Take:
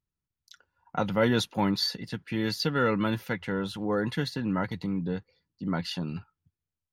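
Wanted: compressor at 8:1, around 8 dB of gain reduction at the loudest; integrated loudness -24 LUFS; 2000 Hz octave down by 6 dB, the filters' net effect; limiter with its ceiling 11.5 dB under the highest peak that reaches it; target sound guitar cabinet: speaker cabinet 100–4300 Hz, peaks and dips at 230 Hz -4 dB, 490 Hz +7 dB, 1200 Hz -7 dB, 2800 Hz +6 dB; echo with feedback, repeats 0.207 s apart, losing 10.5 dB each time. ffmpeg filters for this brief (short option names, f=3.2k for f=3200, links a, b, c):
-af "equalizer=f=2k:t=o:g=-8,acompressor=threshold=-28dB:ratio=8,alimiter=level_in=3.5dB:limit=-24dB:level=0:latency=1,volume=-3.5dB,highpass=100,equalizer=f=230:t=q:w=4:g=-4,equalizer=f=490:t=q:w=4:g=7,equalizer=f=1.2k:t=q:w=4:g=-7,equalizer=f=2.8k:t=q:w=4:g=6,lowpass=f=4.3k:w=0.5412,lowpass=f=4.3k:w=1.3066,aecho=1:1:207|414|621:0.299|0.0896|0.0269,volume=13.5dB"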